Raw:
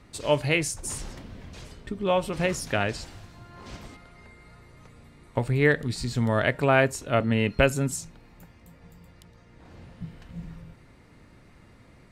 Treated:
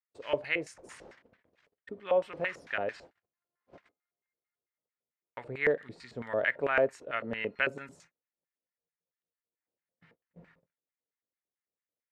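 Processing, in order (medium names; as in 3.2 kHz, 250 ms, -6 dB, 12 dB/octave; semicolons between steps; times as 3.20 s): gate -39 dBFS, range -37 dB; LFO band-pass square 4.5 Hz 520–1800 Hz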